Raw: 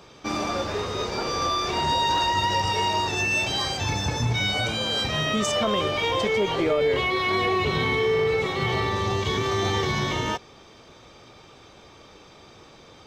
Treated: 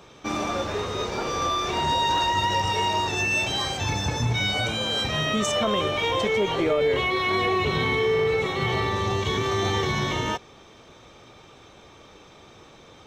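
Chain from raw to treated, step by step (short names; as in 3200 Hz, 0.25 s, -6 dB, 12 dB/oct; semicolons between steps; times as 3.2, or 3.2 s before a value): notch 4800 Hz, Q 8.3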